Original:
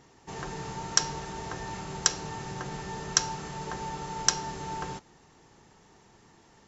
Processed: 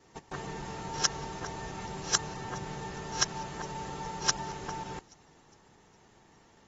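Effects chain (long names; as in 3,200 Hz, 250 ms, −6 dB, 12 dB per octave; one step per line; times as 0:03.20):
reversed piece by piece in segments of 156 ms
delay with a high-pass on its return 413 ms, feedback 41%, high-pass 4,400 Hz, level −21 dB
level −3 dB
AAC 24 kbit/s 48,000 Hz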